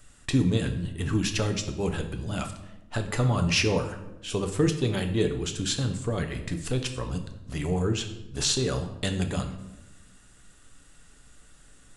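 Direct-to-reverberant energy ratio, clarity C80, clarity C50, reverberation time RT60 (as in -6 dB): 5.0 dB, 12.5 dB, 9.5 dB, 0.95 s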